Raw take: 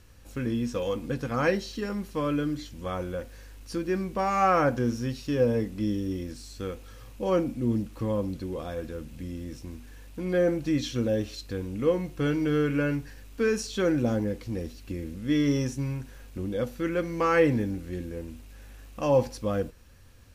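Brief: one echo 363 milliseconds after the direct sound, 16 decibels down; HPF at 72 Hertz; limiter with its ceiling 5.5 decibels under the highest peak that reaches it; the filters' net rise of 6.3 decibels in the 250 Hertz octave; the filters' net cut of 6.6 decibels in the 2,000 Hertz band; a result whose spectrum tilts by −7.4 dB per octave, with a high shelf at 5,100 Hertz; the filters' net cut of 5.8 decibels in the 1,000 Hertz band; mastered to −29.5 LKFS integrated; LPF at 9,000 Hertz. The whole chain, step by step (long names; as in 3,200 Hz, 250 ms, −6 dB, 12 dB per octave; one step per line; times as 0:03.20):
high-pass filter 72 Hz
low-pass filter 9,000 Hz
parametric band 250 Hz +8.5 dB
parametric band 1,000 Hz −7 dB
parametric band 2,000 Hz −7.5 dB
high-shelf EQ 5,100 Hz +8.5 dB
brickwall limiter −15.5 dBFS
single-tap delay 363 ms −16 dB
level −3 dB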